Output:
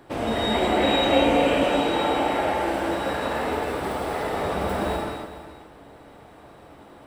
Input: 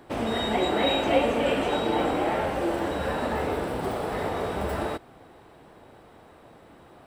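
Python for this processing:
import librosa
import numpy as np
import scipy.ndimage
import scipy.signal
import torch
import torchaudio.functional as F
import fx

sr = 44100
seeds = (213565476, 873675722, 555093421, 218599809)

y = fx.low_shelf(x, sr, hz=350.0, db=-6.5, at=(1.66, 4.33))
y = y + 10.0 ** (-14.0 / 20.0) * np.pad(y, (int(417 * sr / 1000.0), 0))[:len(y)]
y = fx.rev_gated(y, sr, seeds[0], gate_ms=330, shape='flat', drr_db=-1.5)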